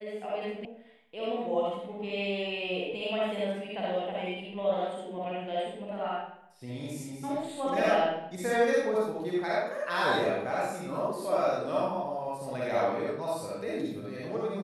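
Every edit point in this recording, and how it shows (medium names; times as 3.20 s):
0.65 s: sound stops dead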